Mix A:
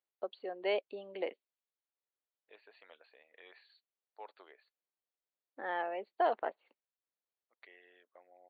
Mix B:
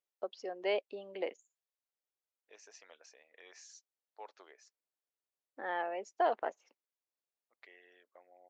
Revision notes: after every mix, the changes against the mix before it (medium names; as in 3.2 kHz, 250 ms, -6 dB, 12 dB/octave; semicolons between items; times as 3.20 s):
master: remove brick-wall FIR low-pass 4.6 kHz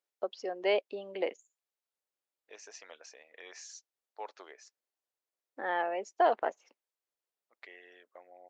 first voice +4.5 dB; second voice +7.0 dB